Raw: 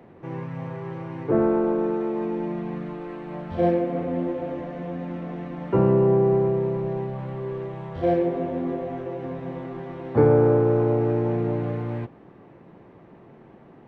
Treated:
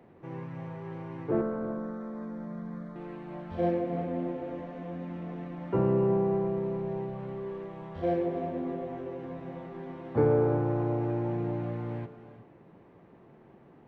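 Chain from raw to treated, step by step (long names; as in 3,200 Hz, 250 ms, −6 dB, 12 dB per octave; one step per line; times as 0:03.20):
0:01.41–0:02.96: phaser with its sweep stopped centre 540 Hz, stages 8
reverb whose tail is shaped and stops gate 390 ms rising, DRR 11 dB
level −7 dB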